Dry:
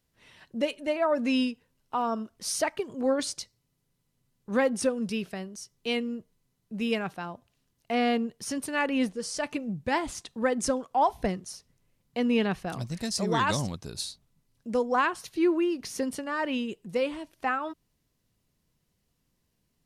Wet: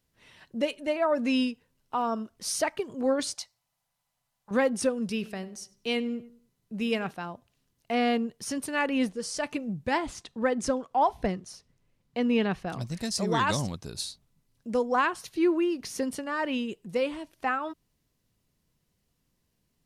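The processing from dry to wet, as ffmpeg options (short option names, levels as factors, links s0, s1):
-filter_complex "[0:a]asettb=1/sr,asplit=3[s0][s1][s2];[s0]atrim=end=3.354[s3];[s1]atrim=start=3.35:end=4.51,asetpts=PTS-STARTPTS,afade=t=in:d=0.004:c=qsin,afade=t=out:st=1.156:d=0.004:c=qsin,lowshelf=f=520:t=q:w=3:g=-12[s4];[s2]atrim=start=4.506[s5];[s3][s4]acrossfade=d=0.004:c1=hsin:c2=qsin[s6];[s6][s5]acrossfade=d=0.004:c1=qsin:c2=hsin,asettb=1/sr,asplit=3[s7][s8][s9];[s7]atrim=end=5.024[s10];[s8]atrim=start=5.02:end=7.11,asetpts=PTS-STARTPTS,afade=t=in:d=0.004:c=qsin,afade=t=out:st=2.086:d=0.004:c=qsin,asplit=2[s11][s12];[s12]adelay=97,lowpass=f=3700:p=1,volume=0.126,asplit=2[s13][s14];[s14]adelay=97,lowpass=f=3700:p=1,volume=0.42,asplit=2[s15][s16];[s16]adelay=97,lowpass=f=3700:p=1,volume=0.42[s17];[s11][s13][s15][s17]amix=inputs=4:normalize=0,atrim=end_sample=92169[s18];[s9]atrim=start=7.106[s19];[s10][s18]acrossfade=d=0.004:c1=hsin:c2=qsin[s20];[s20][s19]acrossfade=d=0.004:c1=qsin:c2=hsin,asettb=1/sr,asplit=3[s21][s22][s23];[s21]atrim=end=9.974[s24];[s22]atrim=start=9.97:end=12.81,asetpts=PTS-STARTPTS,afade=t=in:d=0.004:c=qsin,afade=t=out:st=2.836:d=0.004:c=qsin,highshelf=f=8100:g=-10.5[s25];[s23]atrim=start=12.806[s26];[s24][s25]acrossfade=d=0.004:c1=hsin:c2=qsin[s27];[s27][s26]acrossfade=d=0.004:c1=qsin:c2=hsin"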